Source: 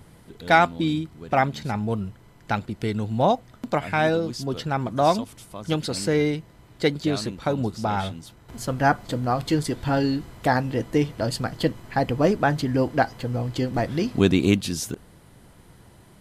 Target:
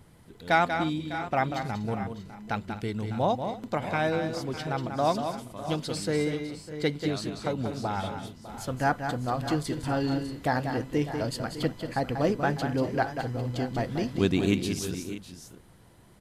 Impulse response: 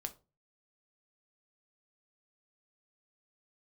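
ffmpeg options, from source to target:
-af "aecho=1:1:189|246|602|635:0.422|0.126|0.188|0.178,volume=-6dB"

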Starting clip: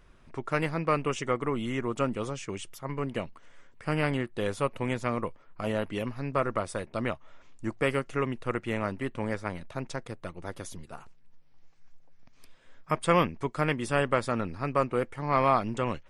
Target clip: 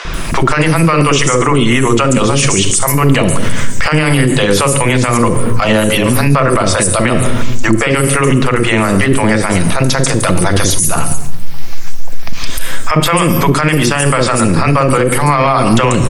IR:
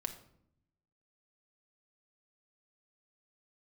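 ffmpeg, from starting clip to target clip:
-filter_complex "[0:a]highshelf=f=5k:g=11,acrossover=split=500|5900[a][b][c];[a]adelay=50[d];[c]adelay=140[e];[d][b][e]amix=inputs=3:normalize=0,asplit=2[f][g];[1:a]atrim=start_sample=2205,asetrate=33957,aresample=44100,highshelf=f=4.3k:g=9.5[h];[g][h]afir=irnorm=-1:irlink=0,volume=-0.5dB[i];[f][i]amix=inputs=2:normalize=0,acompressor=threshold=-33dB:ratio=6,alimiter=level_in=33.5dB:limit=-1dB:release=50:level=0:latency=1,volume=-1dB"

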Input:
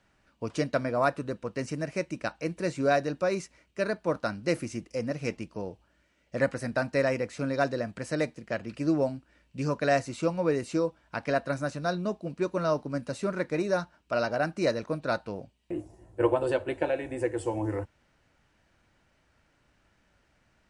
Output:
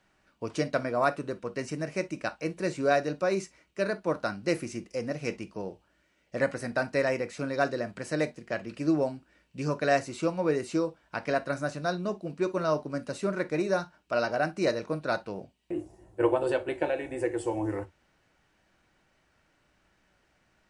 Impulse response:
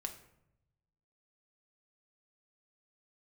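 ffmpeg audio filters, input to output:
-filter_complex "[0:a]lowshelf=f=120:g=-6,asplit=2[a][b];[1:a]atrim=start_sample=2205,atrim=end_sample=3087[c];[b][c]afir=irnorm=-1:irlink=0,volume=3dB[d];[a][d]amix=inputs=2:normalize=0,volume=-6dB"

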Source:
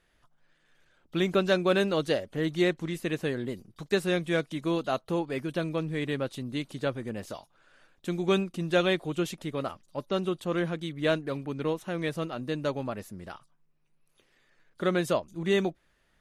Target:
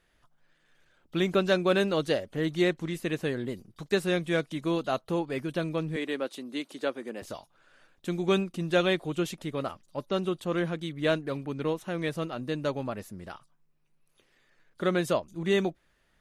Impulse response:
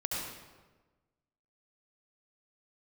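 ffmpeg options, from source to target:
-filter_complex "[0:a]asettb=1/sr,asplit=3[a][b][c];[a]atrim=end=5.964[d];[b]atrim=start=5.96:end=7.22,asetpts=PTS-STARTPTS,afade=t=in:d=0.004:c=qsin,afade=t=out:st=1.256:d=0.004:c=qsin,highpass=f=250:w=0.5412,highpass=f=250:w=1.3066[e];[c]atrim=start=7.216[f];[d][e]acrossfade=d=0.004:c1=hsin:c2=qsin[g];[g][f]acrossfade=d=0.004:c1=qsin:c2=hsin"

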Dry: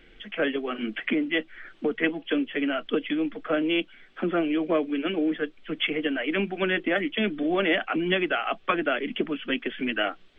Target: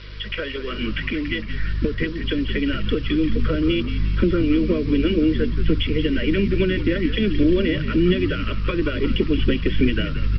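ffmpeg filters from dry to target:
-filter_complex "[0:a]aeval=exprs='val(0)+0.00501*(sin(2*PI*50*n/s)+sin(2*PI*2*50*n/s)/2+sin(2*PI*3*50*n/s)/3+sin(2*PI*4*50*n/s)/4+sin(2*PI*5*50*n/s)/5)':c=same,highshelf=f=2.8k:g=9,aecho=1:1:2.1:0.48,acompressor=threshold=-30dB:ratio=8,asubboost=boost=12:cutoff=240,aresample=11025,acrusher=bits=7:mix=0:aa=0.000001,aresample=44100,acontrast=39,asuperstop=centerf=780:order=12:qfactor=2.6,asplit=2[a][b];[b]asplit=6[c][d][e][f][g][h];[c]adelay=175,afreqshift=-76,volume=-10dB[i];[d]adelay=350,afreqshift=-152,volume=-15.5dB[j];[e]adelay=525,afreqshift=-228,volume=-21dB[k];[f]adelay=700,afreqshift=-304,volume=-26.5dB[l];[g]adelay=875,afreqshift=-380,volume=-32.1dB[m];[h]adelay=1050,afreqshift=-456,volume=-37.6dB[n];[i][j][k][l][m][n]amix=inputs=6:normalize=0[o];[a][o]amix=inputs=2:normalize=0"

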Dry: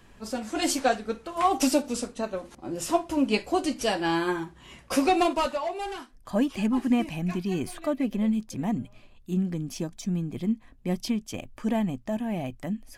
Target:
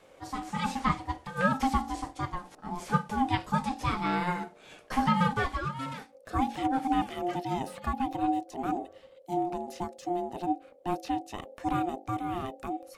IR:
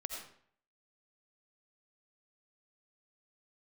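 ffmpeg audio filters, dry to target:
-filter_complex "[0:a]bandreject=f=50:t=h:w=6,bandreject=f=100:t=h:w=6,bandreject=f=150:t=h:w=6,bandreject=f=200:t=h:w=6,bandreject=f=250:t=h:w=6,bandreject=f=300:t=h:w=6,aeval=exprs='val(0)*sin(2*PI*530*n/s)':c=same,acrossover=split=3000[a][b];[b]acompressor=threshold=-46dB:ratio=4:attack=1:release=60[c];[a][c]amix=inputs=2:normalize=0"

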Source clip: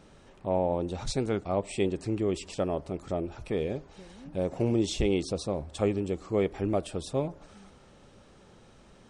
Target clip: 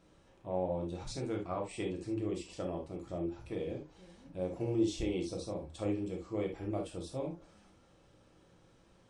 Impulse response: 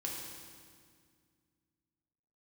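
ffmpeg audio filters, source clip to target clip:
-filter_complex "[0:a]asettb=1/sr,asplit=3[a][b][c];[a]atrim=end=1.434[d];[b]atrim=start=1.43:end=1.85,asetpts=PTS-STARTPTS,afade=t=in:d=0.004:c=qsin,afade=t=out:st=0.416:d=0.004:c=qsin,equalizer=f=1.4k:t=o:w=0.92:g=9[e];[c]atrim=start=1.846[f];[d][e]acrossfade=d=0.004:c1=hsin:c2=qsin[g];[g][f]acrossfade=d=0.004:c1=qsin:c2=hsin[h];[1:a]atrim=start_sample=2205,atrim=end_sample=3528[i];[h][i]afir=irnorm=-1:irlink=0,volume=-8dB"

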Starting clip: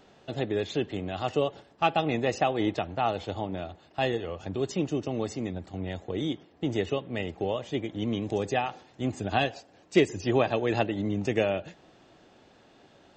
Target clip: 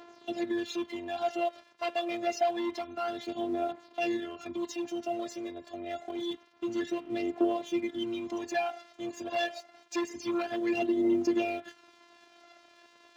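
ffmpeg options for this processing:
-filter_complex "[0:a]asplit=2[a][b];[b]acompressor=threshold=-37dB:ratio=6,volume=1dB[c];[a][c]amix=inputs=2:normalize=0,afftfilt=real='hypot(re,im)*cos(PI*b)':imag='0':win_size=512:overlap=0.75,aresample=16000,asoftclip=type=tanh:threshold=-23dB,aresample=44100,aphaser=in_gain=1:out_gain=1:delay=1.9:decay=0.56:speed=0.27:type=triangular,aeval=exprs='sgn(val(0))*max(abs(val(0))-0.00168,0)':c=same,highpass=150"

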